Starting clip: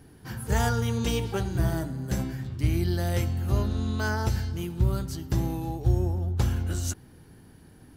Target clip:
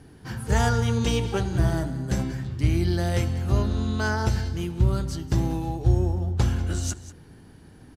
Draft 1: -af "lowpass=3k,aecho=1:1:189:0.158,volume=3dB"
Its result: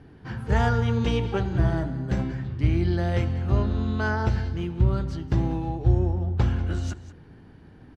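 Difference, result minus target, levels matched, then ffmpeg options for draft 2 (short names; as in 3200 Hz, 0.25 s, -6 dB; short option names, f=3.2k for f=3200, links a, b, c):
8000 Hz band -14.0 dB
-af "lowpass=9.1k,aecho=1:1:189:0.158,volume=3dB"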